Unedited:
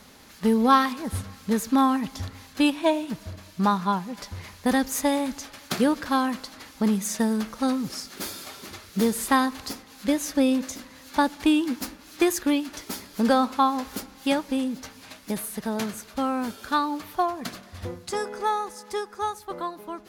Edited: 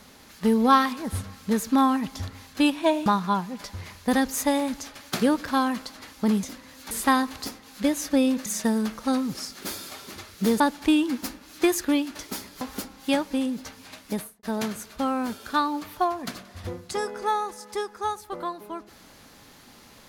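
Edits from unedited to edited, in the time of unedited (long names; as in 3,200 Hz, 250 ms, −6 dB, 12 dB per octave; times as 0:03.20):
0:03.06–0:03.64: remove
0:07.01–0:09.15: swap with 0:10.70–0:11.18
0:13.19–0:13.79: remove
0:15.32–0:15.61: fade out and dull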